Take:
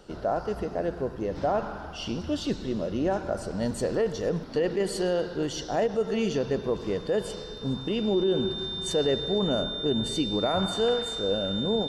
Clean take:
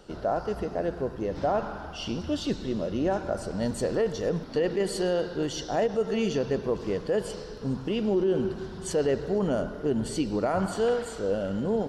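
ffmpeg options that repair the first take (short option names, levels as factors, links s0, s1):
-af "bandreject=f=3600:w=30"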